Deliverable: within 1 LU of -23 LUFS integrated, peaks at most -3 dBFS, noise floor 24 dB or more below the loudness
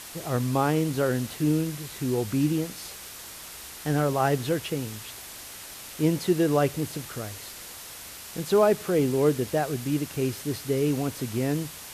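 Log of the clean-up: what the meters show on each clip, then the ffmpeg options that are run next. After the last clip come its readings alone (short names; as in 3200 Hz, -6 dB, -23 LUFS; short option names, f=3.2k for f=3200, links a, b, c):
noise floor -42 dBFS; noise floor target -51 dBFS; loudness -26.5 LUFS; peak -9.5 dBFS; loudness target -23.0 LUFS
-> -af "afftdn=nr=9:nf=-42"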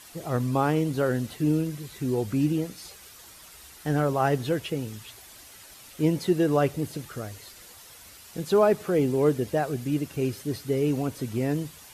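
noise floor -49 dBFS; noise floor target -51 dBFS
-> -af "afftdn=nr=6:nf=-49"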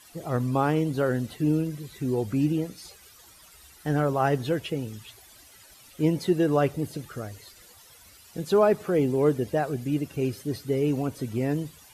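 noise floor -53 dBFS; loudness -26.5 LUFS; peak -9.5 dBFS; loudness target -23.0 LUFS
-> -af "volume=3.5dB"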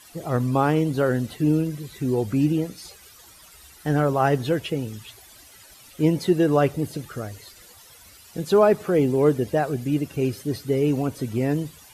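loudness -23.0 LUFS; peak -6.0 dBFS; noise floor -49 dBFS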